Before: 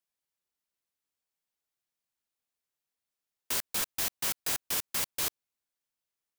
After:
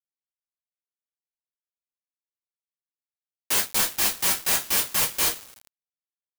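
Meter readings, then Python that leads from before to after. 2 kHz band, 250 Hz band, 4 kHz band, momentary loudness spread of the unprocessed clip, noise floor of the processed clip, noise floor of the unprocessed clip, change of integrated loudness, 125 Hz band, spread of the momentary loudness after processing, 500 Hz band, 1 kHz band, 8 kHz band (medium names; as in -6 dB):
+9.5 dB, +8.5 dB, +9.0 dB, 3 LU, under -85 dBFS, under -85 dBFS, +9.0 dB, +7.5 dB, 3 LU, +8.5 dB, +9.5 dB, +9.0 dB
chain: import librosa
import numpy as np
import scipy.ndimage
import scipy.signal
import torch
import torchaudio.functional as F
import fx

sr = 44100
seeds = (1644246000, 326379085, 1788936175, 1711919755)

y = fx.rev_double_slope(x, sr, seeds[0], early_s=0.23, late_s=3.7, knee_db=-22, drr_db=-3.5)
y = y + 10.0 ** (-62.0 / 20.0) * np.sin(2.0 * np.pi * 1300.0 * np.arange(len(y)) / sr)
y = np.where(np.abs(y) >= 10.0 ** (-34.5 / 20.0), y, 0.0)
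y = F.gain(torch.from_numpy(y), 4.5).numpy()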